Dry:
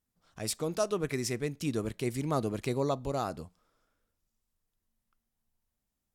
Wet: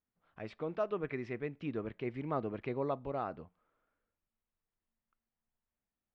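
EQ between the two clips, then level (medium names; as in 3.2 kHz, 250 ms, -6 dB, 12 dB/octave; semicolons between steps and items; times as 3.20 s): low-pass 2.6 kHz 24 dB/octave; bass shelf 190 Hz -7.5 dB; -3.5 dB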